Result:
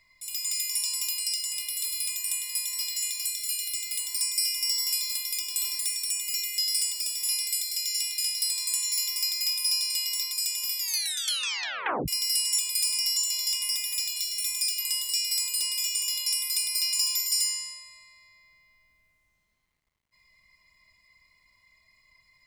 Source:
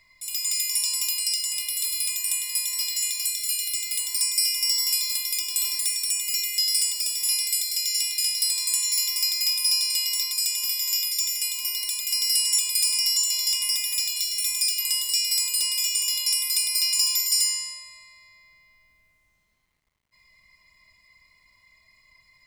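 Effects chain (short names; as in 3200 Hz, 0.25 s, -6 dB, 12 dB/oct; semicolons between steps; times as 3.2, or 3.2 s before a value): 4.63–5.33 low shelf 130 Hz -8 dB; 10.79 tape stop 1.29 s; gain -4 dB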